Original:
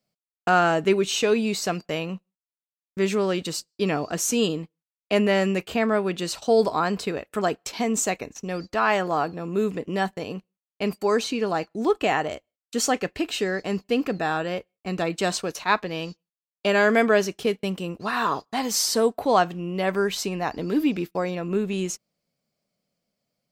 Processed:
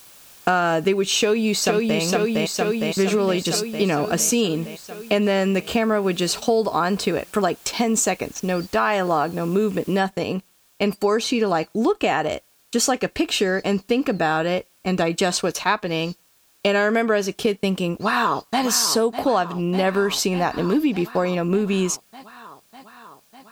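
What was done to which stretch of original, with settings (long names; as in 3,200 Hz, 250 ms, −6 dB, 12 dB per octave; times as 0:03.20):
0:01.20–0:02.00: delay throw 460 ms, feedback 70%, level −2.5 dB
0:09.99: noise floor change −55 dB −67 dB
0:17.95–0:18.63: delay throw 600 ms, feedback 75%, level −10.5 dB
whole clip: downward compressor, threshold −24 dBFS; notch filter 2,000 Hz, Q 14; level +8 dB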